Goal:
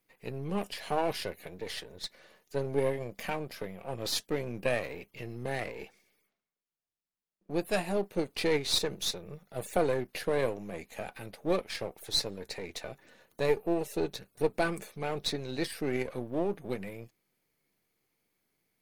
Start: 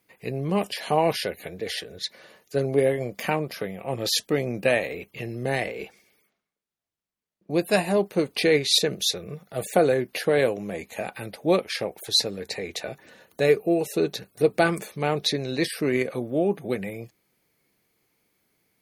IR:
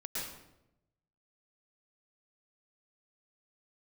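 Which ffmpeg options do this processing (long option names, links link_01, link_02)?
-af "aeval=exprs='if(lt(val(0),0),0.447*val(0),val(0))':channel_layout=same,volume=-5.5dB"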